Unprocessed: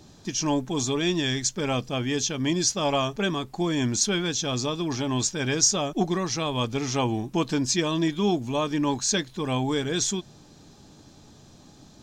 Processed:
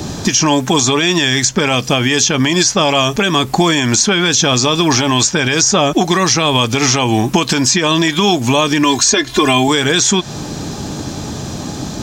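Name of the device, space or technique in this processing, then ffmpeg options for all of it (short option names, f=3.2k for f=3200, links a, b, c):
mastering chain: -filter_complex "[0:a]asettb=1/sr,asplit=3[a][b][c];[a]atrim=end=8.834[d];[b]atrim=start=8.83:end=9.68,asetpts=PTS-STARTPTS,afade=t=in:d=0.004:c=qsin,afade=t=out:st=0.846:d=0.004:c=qsin,aecho=1:1:2.9:0.99,atrim=end_sample=37485[e];[c]atrim=start=9.676[f];[d][e]acrossfade=d=0.004:c1=hsin:c2=qsin[g];[g][f]acrossfade=d=0.004:c1=qsin:c2=hsin,highpass=41,equalizer=f=3.9k:t=o:w=0.77:g=-3,acrossover=split=730|2000|7400[h][i][j][k];[h]acompressor=threshold=-38dB:ratio=4[l];[i]acompressor=threshold=-40dB:ratio=4[m];[j]acompressor=threshold=-34dB:ratio=4[n];[k]acompressor=threshold=-48dB:ratio=4[o];[l][m][n][o]amix=inputs=4:normalize=0,acompressor=threshold=-37dB:ratio=2.5,alimiter=level_in=28.5dB:limit=-1dB:release=50:level=0:latency=1,volume=-1dB"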